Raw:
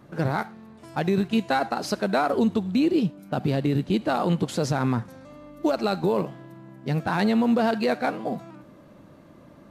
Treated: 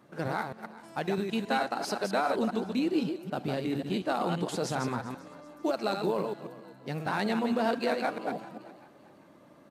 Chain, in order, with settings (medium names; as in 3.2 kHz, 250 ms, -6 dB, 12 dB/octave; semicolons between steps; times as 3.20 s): chunks repeated in reverse 132 ms, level -5 dB; high-pass 290 Hz 6 dB/octave; peaking EQ 8.7 kHz +3.5 dB 0.21 oct; frequency-shifting echo 390 ms, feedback 37%, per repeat +47 Hz, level -19 dB; trim -5 dB